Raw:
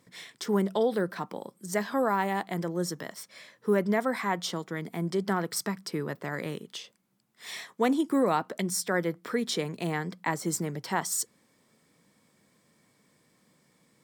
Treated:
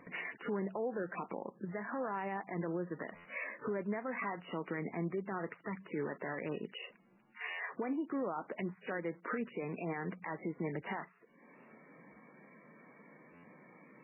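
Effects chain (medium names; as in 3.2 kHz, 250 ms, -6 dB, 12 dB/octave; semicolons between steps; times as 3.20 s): peaking EQ 110 Hz -15 dB 0.74 oct; compression 10:1, threshold -41 dBFS, peak gain reduction 20.5 dB; peak limiter -38 dBFS, peak gain reduction 11 dB; buffer glitch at 3.15/7.50/13.34 s, samples 512, times 7; trim +10 dB; MP3 8 kbps 11.025 kHz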